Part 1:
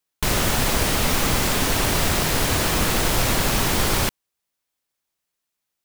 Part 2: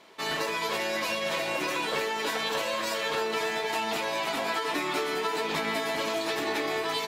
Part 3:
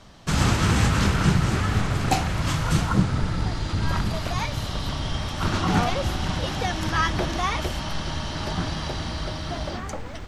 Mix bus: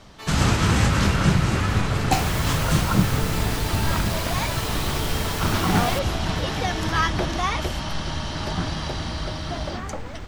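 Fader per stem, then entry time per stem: -9.5, -6.0, +1.0 dB; 1.90, 0.00, 0.00 s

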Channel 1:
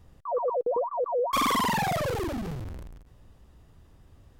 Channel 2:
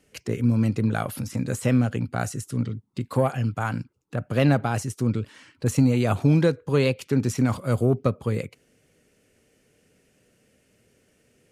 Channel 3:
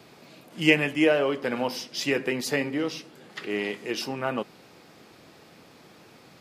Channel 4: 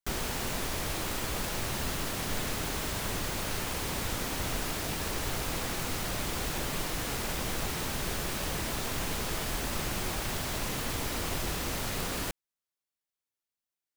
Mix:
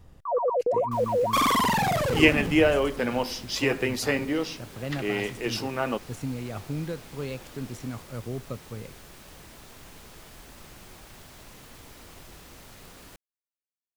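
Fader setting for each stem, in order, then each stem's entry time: +2.5, -13.5, +0.5, -14.5 dB; 0.00, 0.45, 1.55, 0.85 s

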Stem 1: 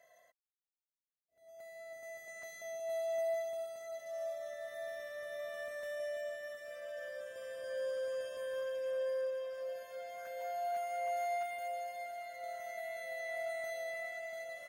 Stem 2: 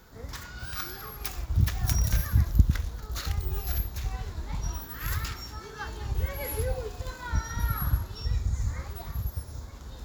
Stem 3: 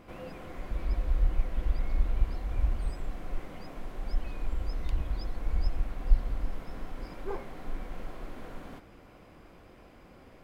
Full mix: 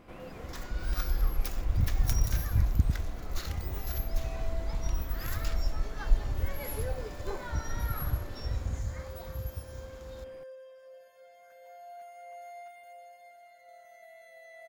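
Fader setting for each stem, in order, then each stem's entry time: -10.0, -5.0, -2.0 dB; 1.25, 0.20, 0.00 s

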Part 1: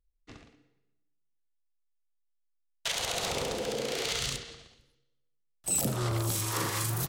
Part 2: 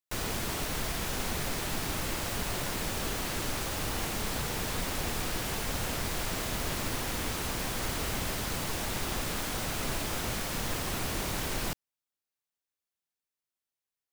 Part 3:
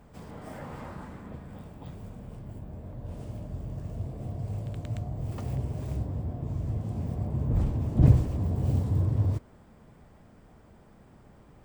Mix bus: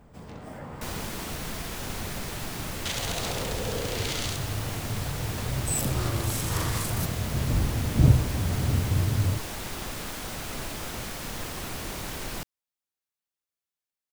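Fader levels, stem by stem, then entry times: -1.0, -2.0, +0.5 dB; 0.00, 0.70, 0.00 s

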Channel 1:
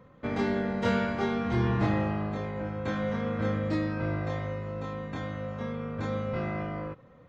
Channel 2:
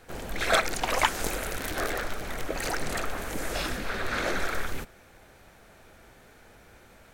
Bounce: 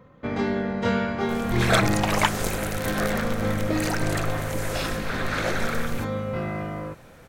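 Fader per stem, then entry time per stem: +3.0, +2.0 dB; 0.00, 1.20 s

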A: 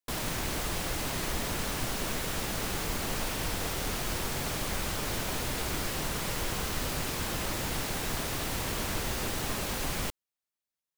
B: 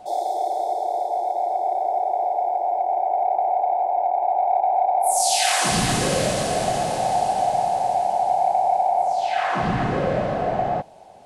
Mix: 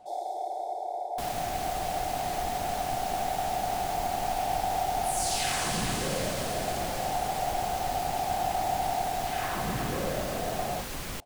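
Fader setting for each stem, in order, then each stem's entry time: -4.0, -10.0 dB; 1.10, 0.00 s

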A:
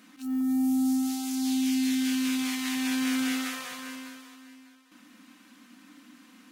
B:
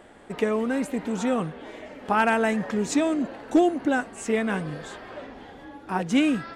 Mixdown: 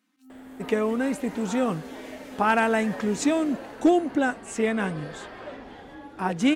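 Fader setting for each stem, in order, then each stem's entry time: -18.5, 0.0 dB; 0.00, 0.30 s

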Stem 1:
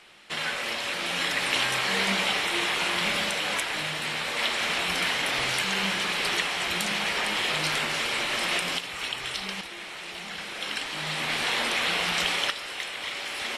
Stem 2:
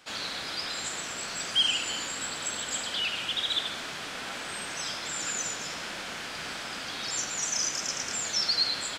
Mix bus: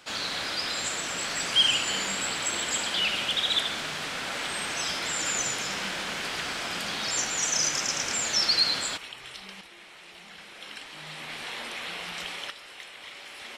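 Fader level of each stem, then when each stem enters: -10.0, +3.0 dB; 0.00, 0.00 s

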